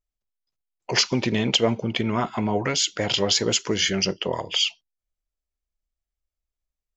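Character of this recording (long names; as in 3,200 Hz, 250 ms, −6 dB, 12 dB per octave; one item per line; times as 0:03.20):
background noise floor −89 dBFS
spectral slope −3.0 dB per octave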